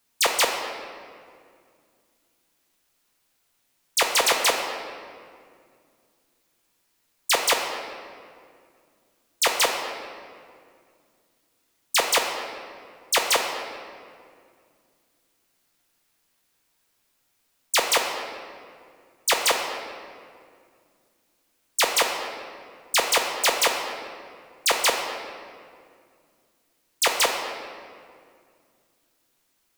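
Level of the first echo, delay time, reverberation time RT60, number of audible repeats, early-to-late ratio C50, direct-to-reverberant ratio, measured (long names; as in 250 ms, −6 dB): no echo audible, no echo audible, 2.2 s, no echo audible, 4.5 dB, 2.0 dB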